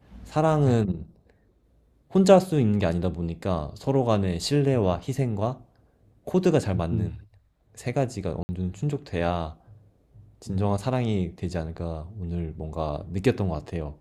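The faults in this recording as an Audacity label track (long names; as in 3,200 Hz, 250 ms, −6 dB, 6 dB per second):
8.430000	8.490000	drop-out 60 ms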